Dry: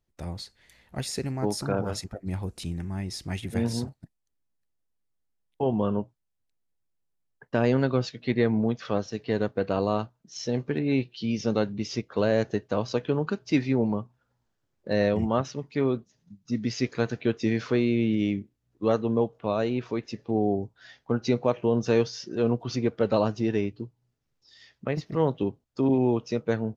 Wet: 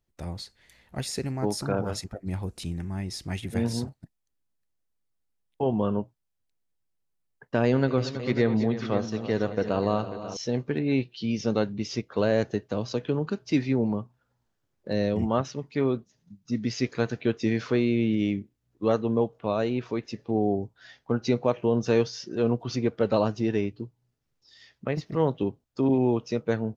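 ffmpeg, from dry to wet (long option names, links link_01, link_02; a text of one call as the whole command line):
ffmpeg -i in.wav -filter_complex "[0:a]asettb=1/sr,asplit=3[link_01][link_02][link_03];[link_01]atrim=end=7.654[link_04];[link_02]atrim=start=7.65:end=10.37,asetpts=PTS-STARTPTS,afade=type=in:duration=0.004:curve=qsin,afade=type=out:start_time=2.716:duration=0.004:curve=qsin,aecho=1:1:81|224|325|541:0.141|0.158|0.211|0.237,atrim=end_sample=119952[link_05];[link_03]atrim=start=10.366[link_06];[link_04][link_05]acrossfade=duration=0.004:curve1=hsin:curve2=qsin[link_07];[link_07][link_06]acrossfade=duration=0.004:curve1=qsin:curve2=hsin,asettb=1/sr,asplit=3[link_08][link_09][link_10];[link_08]atrim=end=12.434[link_11];[link_09]atrim=start=12.43:end=15.22,asetpts=PTS-STARTPTS,afade=type=in:duration=0.004:curve=qsin,afade=type=out:start_time=2.786:duration=0.004:curve=qsin,acrossover=split=490|3000[link_12][link_13][link_14];[link_13]acompressor=threshold=-34dB:ratio=6:attack=3.2:release=140:knee=2.83:detection=peak[link_15];[link_12][link_15][link_14]amix=inputs=3:normalize=0[link_16];[link_10]atrim=start=15.216[link_17];[link_11][link_16]acrossfade=duration=0.004:curve1=hsin:curve2=qsin[link_18];[link_18][link_17]acrossfade=duration=0.004:curve1=qsin:curve2=hsin" out.wav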